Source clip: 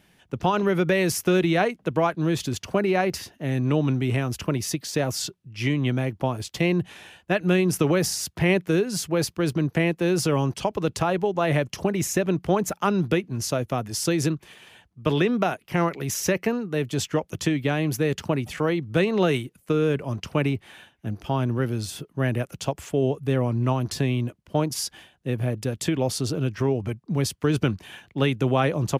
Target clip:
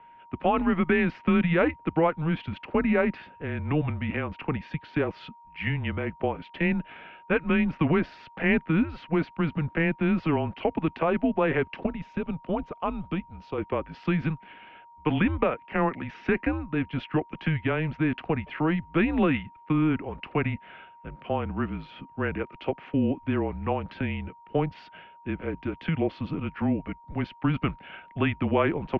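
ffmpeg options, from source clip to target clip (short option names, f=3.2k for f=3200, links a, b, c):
-filter_complex "[0:a]asettb=1/sr,asplit=3[a][b][c];[a]atrim=end=11.864[d];[b]atrim=start=11.86:end=13.58,asetpts=PTS-STARTPTS,afade=t=in:d=0.004:c=qsin,afade=t=out:st=1.716:d=0.004:c=qsin,equalizer=f=250:t=o:w=1:g=-3,equalizer=f=500:t=o:w=1:g=-6,equalizer=f=2k:t=o:w=1:g=-12[e];[c]atrim=start=13.576[f];[d][e]acrossfade=d=0.004:c1=hsin:c2=qsin[g];[g][f]acrossfade=d=0.004:c1=qsin:c2=hsin,aeval=exprs='val(0)+0.00355*sin(2*PI*1100*n/s)':c=same,highpass=f=280:t=q:w=0.5412,highpass=f=280:t=q:w=1.307,lowpass=f=3k:t=q:w=0.5176,lowpass=f=3k:t=q:w=0.7071,lowpass=f=3k:t=q:w=1.932,afreqshift=-160"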